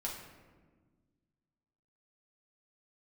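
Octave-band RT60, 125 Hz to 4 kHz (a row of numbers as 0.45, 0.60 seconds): 2.2, 2.2, 1.6, 1.3, 1.1, 0.75 seconds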